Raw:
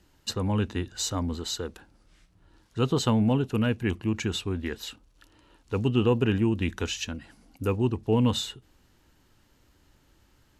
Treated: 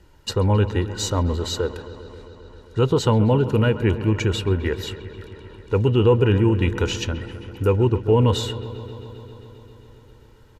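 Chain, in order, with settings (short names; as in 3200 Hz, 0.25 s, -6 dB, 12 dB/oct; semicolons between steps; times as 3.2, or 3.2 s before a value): high shelf 2500 Hz -8.5 dB; comb 2.1 ms, depth 50%; in parallel at +2 dB: limiter -20.5 dBFS, peak gain reduction 8.5 dB; on the sum: dark delay 0.133 s, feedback 81%, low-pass 2800 Hz, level -15 dB; gain +1.5 dB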